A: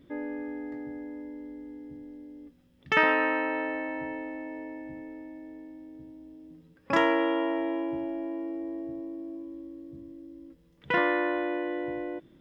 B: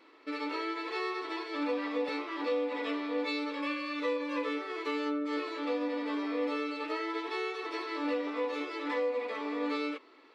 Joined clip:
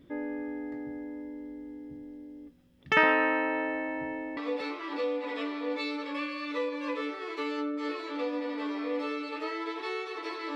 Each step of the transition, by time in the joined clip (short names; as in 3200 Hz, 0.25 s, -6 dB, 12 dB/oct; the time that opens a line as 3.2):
A
4.37 switch to B from 1.85 s